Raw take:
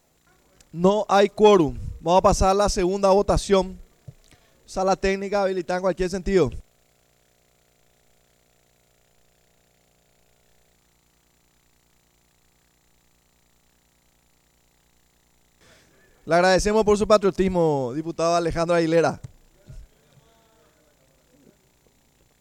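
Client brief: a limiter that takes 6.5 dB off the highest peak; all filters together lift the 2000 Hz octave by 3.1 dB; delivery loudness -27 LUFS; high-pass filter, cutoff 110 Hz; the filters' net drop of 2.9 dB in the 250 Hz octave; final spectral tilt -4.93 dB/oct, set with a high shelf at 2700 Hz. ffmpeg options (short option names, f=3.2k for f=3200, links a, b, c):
-af "highpass=110,equalizer=f=250:t=o:g=-4.5,equalizer=f=2k:t=o:g=5.5,highshelf=f=2.7k:g=-3,volume=-4dB,alimiter=limit=-15dB:level=0:latency=1"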